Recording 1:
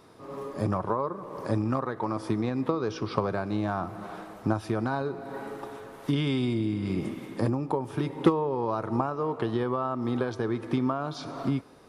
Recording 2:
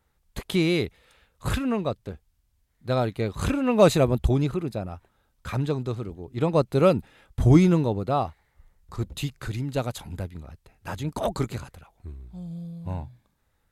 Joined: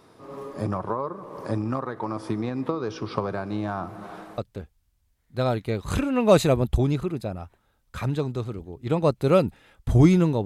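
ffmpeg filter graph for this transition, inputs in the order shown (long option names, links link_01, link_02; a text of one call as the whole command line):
ffmpeg -i cue0.wav -i cue1.wav -filter_complex "[0:a]apad=whole_dur=10.45,atrim=end=10.45,atrim=end=4.382[link_01];[1:a]atrim=start=1.888:end=7.96[link_02];[link_01][link_02]acrossfade=duration=0.004:curve1=hsin:curve2=hsin" out.wav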